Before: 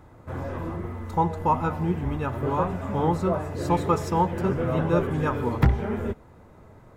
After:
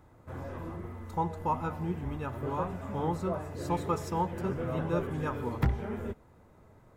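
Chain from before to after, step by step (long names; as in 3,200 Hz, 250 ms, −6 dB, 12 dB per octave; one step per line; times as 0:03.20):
high-shelf EQ 6,300 Hz +4.5 dB
level −8 dB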